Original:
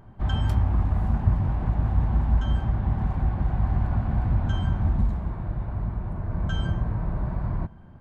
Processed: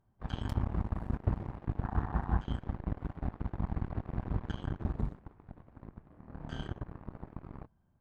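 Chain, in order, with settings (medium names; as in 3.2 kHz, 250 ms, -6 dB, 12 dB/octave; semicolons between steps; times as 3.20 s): Chebyshev shaper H 5 -38 dB, 7 -15 dB, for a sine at -8 dBFS; 1.83–2.39 s: time-frequency box 680–1900 Hz +8 dB; 6.09–6.68 s: flutter echo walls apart 4.6 m, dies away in 0.39 s; trim -9 dB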